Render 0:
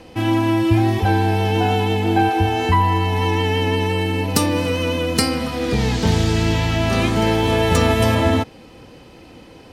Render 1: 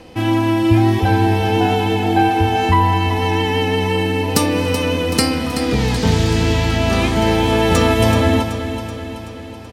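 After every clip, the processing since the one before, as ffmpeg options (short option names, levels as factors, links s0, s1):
-af "aecho=1:1:379|758|1137|1516|1895|2274|2653:0.316|0.18|0.103|0.0586|0.0334|0.019|0.0108,volume=1.19"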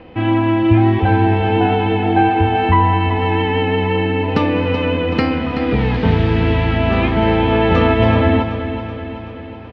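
-af "lowpass=f=2900:w=0.5412,lowpass=f=2900:w=1.3066,volume=1.12"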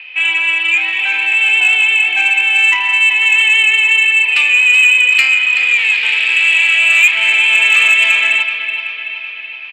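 -af "highpass=f=2500:t=q:w=8.2,acontrast=89,volume=0.891"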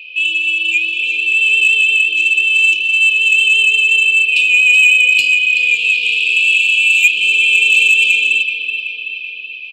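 -af "afftfilt=real='re*(1-between(b*sr/4096,530,2400))':imag='im*(1-between(b*sr/4096,530,2400))':win_size=4096:overlap=0.75"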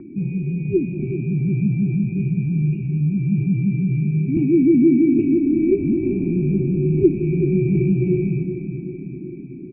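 -af "equalizer=f=1200:t=o:w=3:g=12.5,lowpass=f=2400:t=q:w=0.5098,lowpass=f=2400:t=q:w=0.6013,lowpass=f=2400:t=q:w=0.9,lowpass=f=2400:t=q:w=2.563,afreqshift=-2800,volume=0.422"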